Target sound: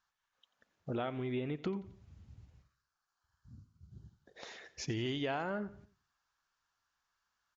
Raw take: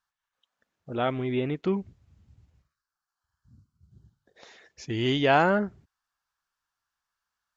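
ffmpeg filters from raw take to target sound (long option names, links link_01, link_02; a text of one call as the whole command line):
ffmpeg -i in.wav -filter_complex "[0:a]acompressor=threshold=-36dB:ratio=8,asplit=2[link_01][link_02];[link_02]aecho=0:1:88|176|264:0.126|0.0529|0.0222[link_03];[link_01][link_03]amix=inputs=2:normalize=0,aresample=16000,aresample=44100,volume=2dB" out.wav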